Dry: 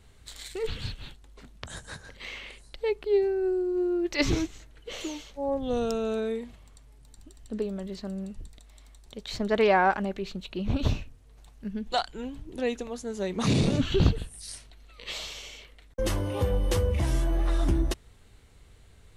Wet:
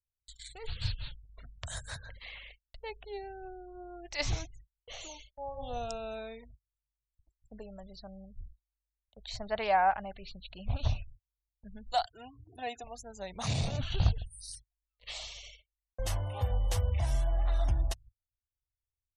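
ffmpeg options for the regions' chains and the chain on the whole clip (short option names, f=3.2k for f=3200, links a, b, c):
-filter_complex "[0:a]asettb=1/sr,asplit=3[a][b][c];[a]atrim=end=0.814[d];[b]atrim=start=0.81:end=2.19,asetpts=PTS-STARTPTS,afade=t=in:d=0.004:c=qsin,afade=t=out:st=1.376:d=0.004:c=qsin,equalizer=f=800:w=5.1:g=-6.5,acontrast=43,volume=17dB,asoftclip=hard,volume=-17dB[e];[c]atrim=start=2.186[f];[d][e]acrossfade=d=0.004:c1=hsin:c2=qsin[g];[g][f]acrossfade=d=0.004:c1=qsin:c2=hsin,asettb=1/sr,asplit=3[h][i][j];[h]atrim=end=5.194[k];[i]atrim=start=5.19:end=6.45,asetpts=PTS-STARTPTS,afade=t=in:d=0.004:c=qsin,afade=t=out:st=1.256:d=0.004:c=qsin,equalizer=f=2.4k:t=o:w=0.25:g=5.5,bandreject=f=91.99:t=h:w=4,bandreject=f=183.98:t=h:w=4,bandreject=f=275.97:t=h:w=4,bandreject=f=367.96:t=h:w=4,bandreject=f=459.95:t=h:w=4,bandreject=f=551.94:t=h:w=4,bandreject=f=643.93:t=h:w=4,bandreject=f=735.92:t=h:w=4,bandreject=f=827.91:t=h:w=4,bandreject=f=919.9:t=h:w=4,bandreject=f=1.01189k:t=h:w=4,bandreject=f=1.10388k:t=h:w=4,bandreject=f=1.19587k:t=h:w=4,bandreject=f=1.28786k:t=h:w=4,bandreject=f=1.37985k:t=h:w=4[l];[j]atrim=start=6.446[m];[k][l]acrossfade=d=0.004:c1=hsin:c2=qsin[n];[n][m]acrossfade=d=0.004:c1=qsin:c2=hsin,asettb=1/sr,asplit=3[o][p][q];[o]atrim=end=12.054[r];[p]atrim=start=12.05:end=12.84,asetpts=PTS-STARTPTS,afade=t=in:d=0.004:c=qsin,afade=t=out:st=0.786:d=0.004:c=qsin,highpass=f=87:w=0.5412,highpass=f=87:w=1.3066,equalizer=f=5.1k:w=1.7:g=-5.5,aecho=1:1:2.8:0.88,atrim=end_sample=34839[s];[q]atrim=start=12.836[t];[r][s]acrossfade=d=0.004:c1=hsin:c2=qsin[u];[u][t]acrossfade=d=0.004:c1=qsin:c2=hsin,afftfilt=real='re*gte(hypot(re,im),0.00708)':imag='im*gte(hypot(re,im),0.00708)':win_size=1024:overlap=0.75,agate=range=-36dB:threshold=-45dB:ratio=16:detection=peak,firequalizer=gain_entry='entry(110,0);entry(170,-11);entry(340,-20);entry(700,3);entry(1100,-5);entry(5800,0)':delay=0.05:min_phase=1,volume=-3dB"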